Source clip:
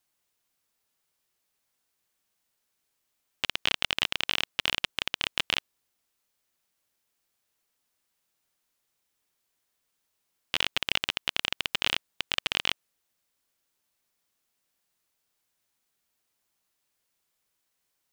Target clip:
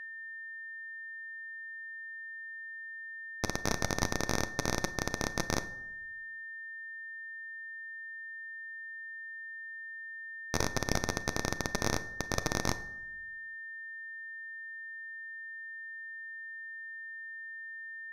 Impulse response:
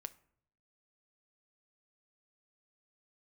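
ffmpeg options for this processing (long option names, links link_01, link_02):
-filter_complex "[0:a]acrossover=split=230 5300:gain=0.224 1 0.178[link_01][link_02][link_03];[link_01][link_02][link_03]amix=inputs=3:normalize=0,aeval=exprs='abs(val(0))':channel_layout=same,aeval=exprs='val(0)+0.0112*sin(2*PI*1800*n/s)':channel_layout=same[link_04];[1:a]atrim=start_sample=2205,asetrate=28665,aresample=44100[link_05];[link_04][link_05]afir=irnorm=-1:irlink=0"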